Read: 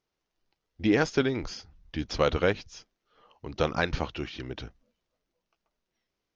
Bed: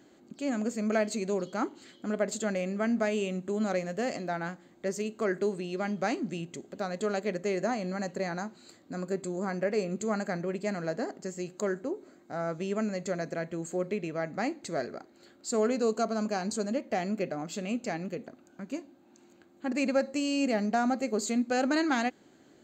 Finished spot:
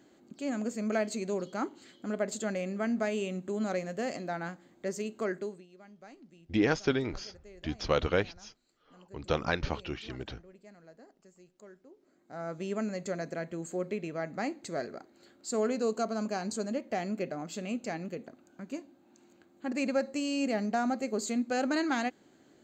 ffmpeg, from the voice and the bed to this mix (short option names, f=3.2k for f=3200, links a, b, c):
-filter_complex "[0:a]adelay=5700,volume=-3dB[a];[1:a]volume=17dB,afade=t=out:st=5.22:d=0.44:silence=0.105925,afade=t=in:st=11.96:d=0.71:silence=0.105925[b];[a][b]amix=inputs=2:normalize=0"